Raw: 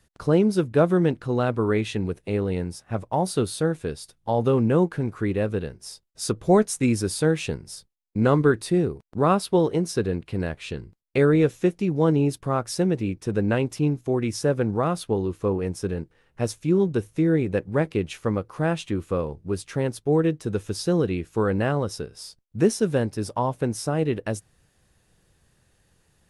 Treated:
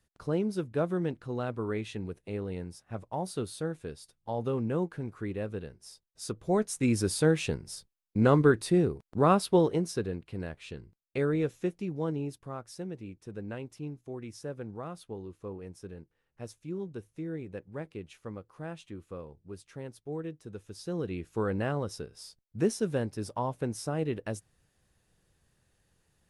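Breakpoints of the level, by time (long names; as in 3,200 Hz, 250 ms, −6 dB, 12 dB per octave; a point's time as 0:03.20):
0:06.48 −10.5 dB
0:07.02 −3 dB
0:09.57 −3 dB
0:10.21 −10 dB
0:11.75 −10 dB
0:12.69 −16.5 dB
0:20.68 −16.5 dB
0:21.26 −7.5 dB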